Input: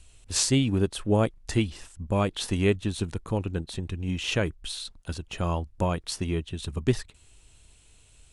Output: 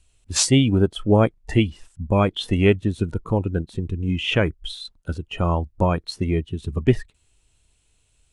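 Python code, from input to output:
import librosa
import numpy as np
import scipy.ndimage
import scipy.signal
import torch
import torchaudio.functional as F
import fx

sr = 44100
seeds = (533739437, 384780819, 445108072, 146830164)

y = fx.noise_reduce_blind(x, sr, reduce_db=14)
y = F.gain(torch.from_numpy(y), 6.5).numpy()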